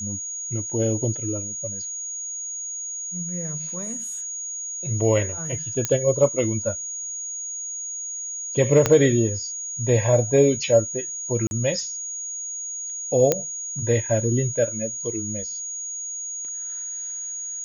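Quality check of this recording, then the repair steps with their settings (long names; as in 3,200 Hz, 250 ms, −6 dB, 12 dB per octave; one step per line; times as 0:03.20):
whistle 6,700 Hz −29 dBFS
0:05.85: click −7 dBFS
0:08.86: click −4 dBFS
0:11.47–0:11.51: drop-out 41 ms
0:13.32: click −4 dBFS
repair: click removal
notch filter 6,700 Hz, Q 30
repair the gap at 0:11.47, 41 ms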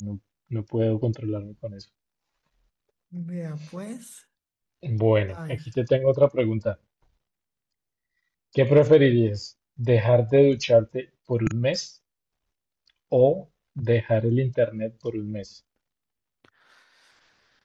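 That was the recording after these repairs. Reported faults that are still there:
0:08.86: click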